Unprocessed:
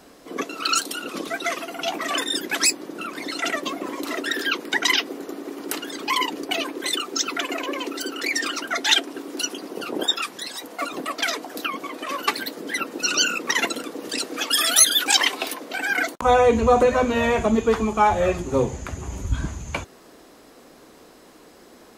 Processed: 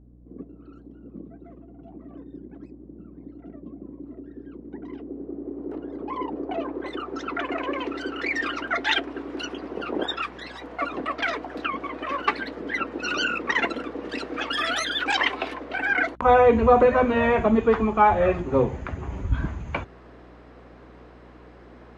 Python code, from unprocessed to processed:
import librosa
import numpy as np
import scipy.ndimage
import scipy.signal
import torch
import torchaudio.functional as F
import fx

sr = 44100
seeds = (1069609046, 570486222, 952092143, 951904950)

y = fx.filter_sweep_lowpass(x, sr, from_hz=180.0, to_hz=2100.0, start_s=4.39, end_s=7.84, q=0.9)
y = fx.add_hum(y, sr, base_hz=60, snr_db=25)